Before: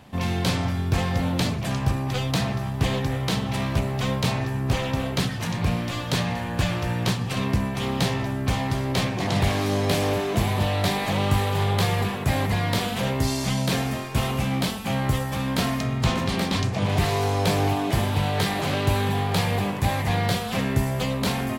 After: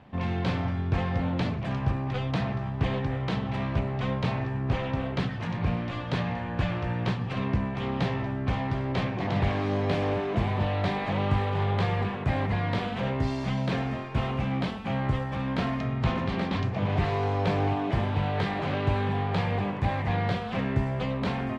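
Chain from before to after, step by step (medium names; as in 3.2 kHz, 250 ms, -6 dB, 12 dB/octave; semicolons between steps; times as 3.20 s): low-pass 2.5 kHz 12 dB/octave; trim -3.5 dB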